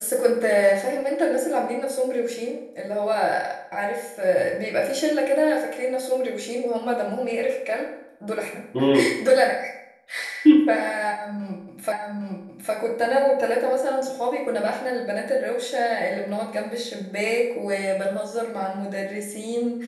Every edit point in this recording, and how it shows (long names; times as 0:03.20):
0:11.92: the same again, the last 0.81 s